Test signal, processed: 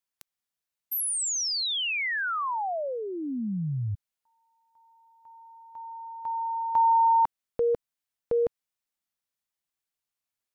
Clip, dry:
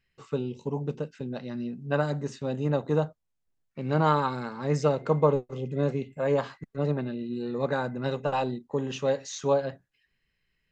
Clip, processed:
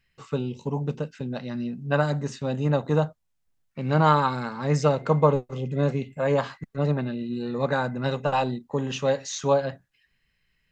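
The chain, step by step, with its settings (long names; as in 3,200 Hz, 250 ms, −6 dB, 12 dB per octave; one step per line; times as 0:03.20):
parametric band 380 Hz −5 dB 0.98 octaves
level +5 dB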